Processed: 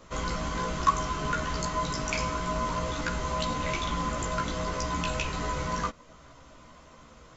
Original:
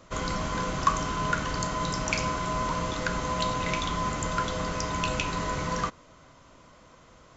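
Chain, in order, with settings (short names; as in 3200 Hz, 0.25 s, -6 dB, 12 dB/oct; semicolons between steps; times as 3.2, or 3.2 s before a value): in parallel at -3 dB: compressor, threshold -41 dBFS, peak gain reduction 21.5 dB; on the sum: chorus voices 6, 0.52 Hz, delay 15 ms, depth 2.6 ms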